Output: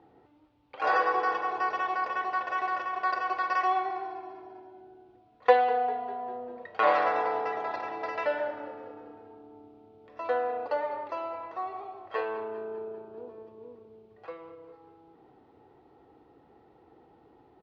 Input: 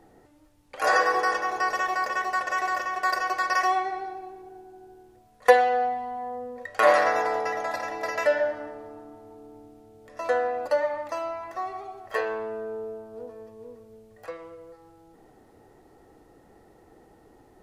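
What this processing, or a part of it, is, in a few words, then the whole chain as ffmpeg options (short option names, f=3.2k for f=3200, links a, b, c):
frequency-shifting delay pedal into a guitar cabinet: -filter_complex "[0:a]asplit=6[a][b][c][d][e][f];[b]adelay=199,afreqshift=-30,volume=-17dB[g];[c]adelay=398,afreqshift=-60,volume=-21.9dB[h];[d]adelay=597,afreqshift=-90,volume=-26.8dB[i];[e]adelay=796,afreqshift=-120,volume=-31.6dB[j];[f]adelay=995,afreqshift=-150,volume=-36.5dB[k];[a][g][h][i][j][k]amix=inputs=6:normalize=0,highpass=80,equalizer=f=100:t=q:w=4:g=-3,equalizer=f=200:t=q:w=4:g=-5,equalizer=f=600:t=q:w=4:g=-5,equalizer=f=870:t=q:w=4:g=3,equalizer=f=1.8k:t=q:w=4:g=-7,lowpass=f=3.7k:w=0.5412,lowpass=f=3.7k:w=1.3066,volume=-2.5dB"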